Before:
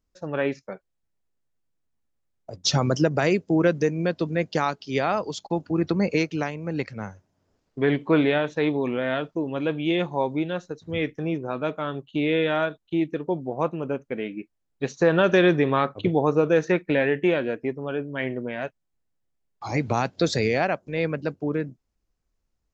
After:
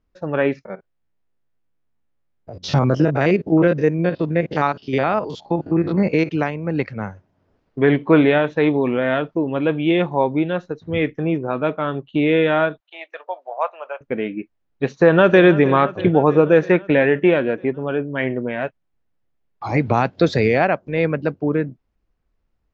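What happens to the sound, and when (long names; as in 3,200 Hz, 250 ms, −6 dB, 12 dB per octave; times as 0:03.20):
0:00.65–0:06.30: spectrum averaged block by block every 50 ms
0:12.80–0:14.01: elliptic high-pass filter 610 Hz, stop band 70 dB
0:14.92–0:15.44: delay throw 320 ms, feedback 70%, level −16 dB
whole clip: low-pass filter 2,900 Hz 12 dB per octave; level +6.5 dB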